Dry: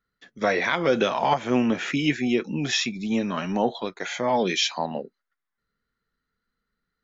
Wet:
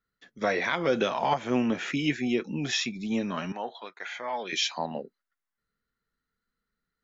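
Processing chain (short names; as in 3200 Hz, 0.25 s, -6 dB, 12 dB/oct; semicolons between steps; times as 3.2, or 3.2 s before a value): 3.52–4.53 band-pass 1700 Hz, Q 0.83; gain -4 dB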